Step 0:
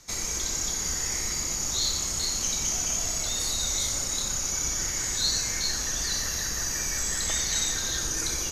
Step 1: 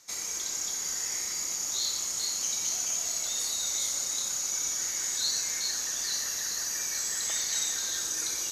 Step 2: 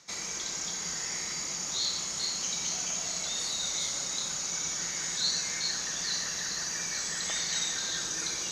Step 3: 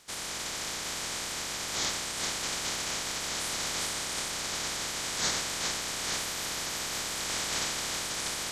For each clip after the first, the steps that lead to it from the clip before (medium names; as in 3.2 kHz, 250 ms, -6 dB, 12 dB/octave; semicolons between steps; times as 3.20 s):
high-pass 530 Hz 6 dB/octave; treble shelf 7.3 kHz +4.5 dB; feedback echo behind a high-pass 432 ms, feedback 80%, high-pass 4 kHz, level -9 dB; trim -5 dB
low-pass 5.1 kHz 12 dB/octave; peaking EQ 170 Hz +11.5 dB 0.4 oct; reverse; upward compressor, threshold -38 dBFS; reverse; trim +3 dB
spectral peaks clipped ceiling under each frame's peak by 27 dB; band-stop 2.7 kHz, Q 23